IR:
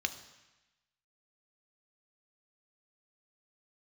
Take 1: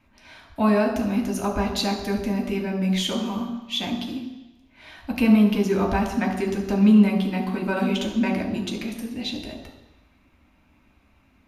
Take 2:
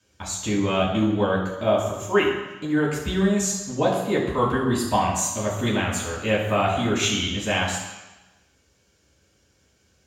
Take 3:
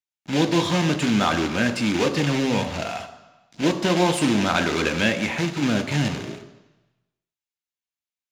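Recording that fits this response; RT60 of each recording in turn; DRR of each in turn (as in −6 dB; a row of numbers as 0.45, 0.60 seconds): 3; 1.0, 1.0, 1.0 seconds; 0.5, −6.5, 8.0 decibels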